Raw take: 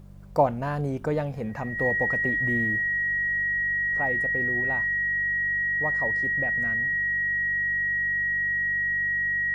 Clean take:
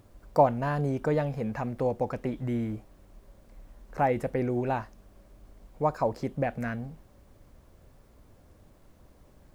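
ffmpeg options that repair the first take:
-af "bandreject=f=48.3:t=h:w=4,bandreject=f=96.6:t=h:w=4,bandreject=f=144.9:t=h:w=4,bandreject=f=193.2:t=h:w=4,bandreject=f=1.9k:w=30,asetnsamples=n=441:p=0,asendcmd='3.44 volume volume 6.5dB',volume=0dB"

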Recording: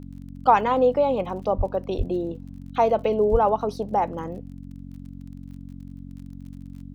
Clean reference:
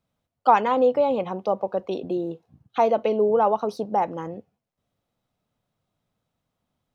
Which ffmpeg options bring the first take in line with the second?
-filter_complex "[0:a]adeclick=t=4,bandreject=f=45.8:t=h:w=4,bandreject=f=91.6:t=h:w=4,bandreject=f=137.4:t=h:w=4,bandreject=f=183.2:t=h:w=4,bandreject=f=229:t=h:w=4,bandreject=f=274.8:t=h:w=4,asplit=3[a][b][c];[a]afade=t=out:st=1.57:d=0.02[d];[b]highpass=f=140:w=0.5412,highpass=f=140:w=1.3066,afade=t=in:st=1.57:d=0.02,afade=t=out:st=1.69:d=0.02[e];[c]afade=t=in:st=1.69:d=0.02[f];[d][e][f]amix=inputs=3:normalize=0,asplit=3[g][h][i];[g]afade=t=out:st=1.97:d=0.02[j];[h]highpass=f=140:w=0.5412,highpass=f=140:w=1.3066,afade=t=in:st=1.97:d=0.02,afade=t=out:st=2.09:d=0.02[k];[i]afade=t=in:st=2.09:d=0.02[l];[j][k][l]amix=inputs=3:normalize=0,asplit=3[m][n][o];[m]afade=t=out:st=3.31:d=0.02[p];[n]highpass=f=140:w=0.5412,highpass=f=140:w=1.3066,afade=t=in:st=3.31:d=0.02,afade=t=out:st=3.43:d=0.02[q];[o]afade=t=in:st=3.43:d=0.02[r];[p][q][r]amix=inputs=3:normalize=0"

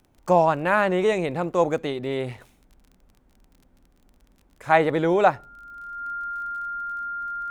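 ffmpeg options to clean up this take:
-af "adeclick=t=4,bandreject=f=1.4k:w=30"

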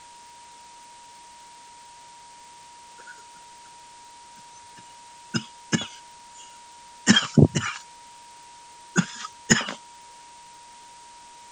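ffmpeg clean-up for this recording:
-af "adeclick=t=4,bandreject=f=950:w=30,afwtdn=0.004"

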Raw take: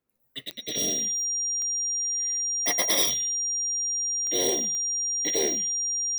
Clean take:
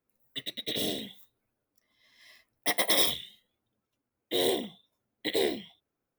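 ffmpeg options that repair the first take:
-af "adeclick=t=4,bandreject=f=5.7k:w=30"

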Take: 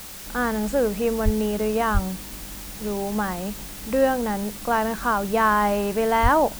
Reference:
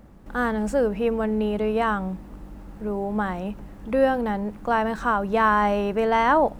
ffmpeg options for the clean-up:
-filter_complex "[0:a]asplit=3[a][b][c];[a]afade=t=out:st=1.24:d=0.02[d];[b]highpass=f=140:w=0.5412,highpass=f=140:w=1.3066,afade=t=in:st=1.24:d=0.02,afade=t=out:st=1.36:d=0.02[e];[c]afade=t=in:st=1.36:d=0.02[f];[d][e][f]amix=inputs=3:normalize=0,asplit=3[g][h][i];[g]afade=t=out:st=1.93:d=0.02[j];[h]highpass=f=140:w=0.5412,highpass=f=140:w=1.3066,afade=t=in:st=1.93:d=0.02,afade=t=out:st=2.05:d=0.02[k];[i]afade=t=in:st=2.05:d=0.02[l];[j][k][l]amix=inputs=3:normalize=0,asplit=3[m][n][o];[m]afade=t=out:st=6.22:d=0.02[p];[n]highpass=f=140:w=0.5412,highpass=f=140:w=1.3066,afade=t=in:st=6.22:d=0.02,afade=t=out:st=6.34:d=0.02[q];[o]afade=t=in:st=6.34:d=0.02[r];[p][q][r]amix=inputs=3:normalize=0,afwtdn=0.011"

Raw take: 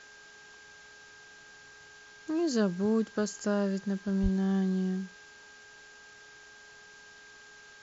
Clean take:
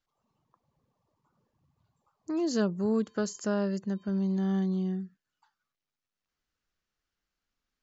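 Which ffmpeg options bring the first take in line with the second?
-filter_complex "[0:a]bandreject=f=418.9:t=h:w=4,bandreject=f=837.8:t=h:w=4,bandreject=f=1.2567k:t=h:w=4,bandreject=f=1.6756k:t=h:w=4,bandreject=f=1.6k:w=30,asplit=3[a][b][c];[a]afade=t=out:st=4.22:d=0.02[d];[b]highpass=f=140:w=0.5412,highpass=f=140:w=1.3066,afade=t=in:st=4.22:d=0.02,afade=t=out:st=4.34:d=0.02[e];[c]afade=t=in:st=4.34:d=0.02[f];[d][e][f]amix=inputs=3:normalize=0,afwtdn=0.0022"

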